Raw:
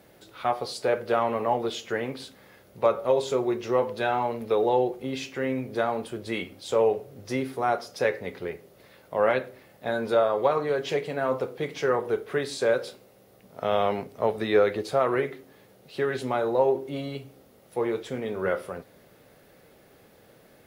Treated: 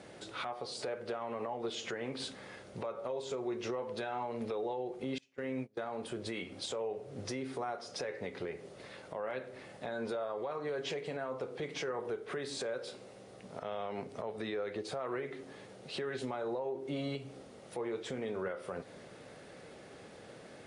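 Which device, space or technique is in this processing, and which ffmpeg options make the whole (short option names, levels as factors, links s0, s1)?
podcast mastering chain: -filter_complex "[0:a]asettb=1/sr,asplit=3[s0][s1][s2];[s0]atrim=end=5.184[s3];[s1]atrim=start=5.18:end=5.84,asetpts=PTS-STARTPTS,afade=t=in:d=0.004:c=qsin,afade=t=out:st=0.656:d=0.004:c=qsin,agate=range=0.0224:threshold=0.0316:ratio=16:detection=peak[s4];[s2]atrim=start=5.836[s5];[s3][s4]acrossfade=d=0.004:c1=hsin:c2=qsin[s6];[s6][s5]acrossfade=d=0.004:c1=qsin:c2=hsin,highpass=f=94:p=1,deesser=0.95,acompressor=threshold=0.0158:ratio=2.5,alimiter=level_in=2.82:limit=0.0631:level=0:latency=1:release=198,volume=0.355,volume=1.68" -ar 22050 -c:a libmp3lame -b:a 96k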